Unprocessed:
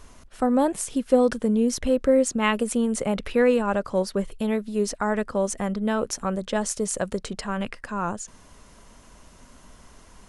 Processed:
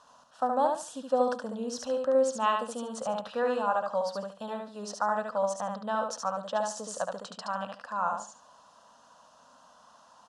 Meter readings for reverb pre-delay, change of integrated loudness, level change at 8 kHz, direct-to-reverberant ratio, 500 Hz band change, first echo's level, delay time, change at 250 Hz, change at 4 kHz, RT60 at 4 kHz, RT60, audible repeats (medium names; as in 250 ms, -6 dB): no reverb, -6.5 dB, -10.0 dB, no reverb, -6.0 dB, -4.0 dB, 72 ms, -14.5 dB, -6.0 dB, no reverb, no reverb, 3